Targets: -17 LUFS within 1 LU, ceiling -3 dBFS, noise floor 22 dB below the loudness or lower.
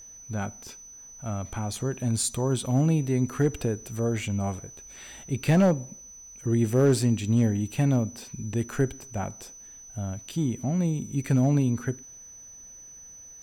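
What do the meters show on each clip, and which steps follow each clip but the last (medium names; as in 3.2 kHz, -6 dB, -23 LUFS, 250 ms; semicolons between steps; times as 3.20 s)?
clipped samples 0.2%; clipping level -13.5 dBFS; steady tone 6 kHz; tone level -44 dBFS; loudness -26.5 LUFS; peak level -13.5 dBFS; loudness target -17.0 LUFS
-> clip repair -13.5 dBFS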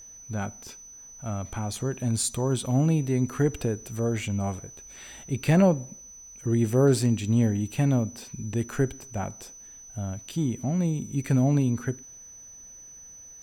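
clipped samples 0.0%; steady tone 6 kHz; tone level -44 dBFS
-> band-stop 6 kHz, Q 30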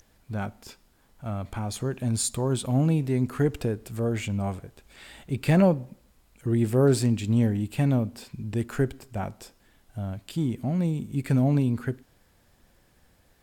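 steady tone not found; loudness -26.5 LUFS; peak level -8.5 dBFS; loudness target -17.0 LUFS
-> trim +9.5 dB; peak limiter -3 dBFS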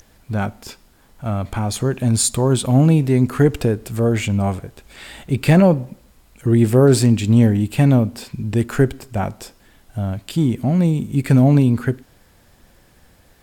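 loudness -17.5 LUFS; peak level -3.0 dBFS; noise floor -53 dBFS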